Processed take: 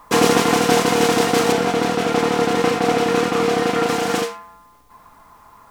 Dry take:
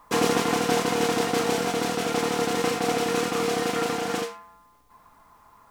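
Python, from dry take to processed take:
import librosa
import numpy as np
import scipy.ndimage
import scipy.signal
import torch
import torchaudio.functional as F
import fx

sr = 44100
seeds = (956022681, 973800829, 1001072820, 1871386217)

y = fx.high_shelf(x, sr, hz=4800.0, db=-9.5, at=(1.52, 3.89))
y = F.gain(torch.from_numpy(y), 7.5).numpy()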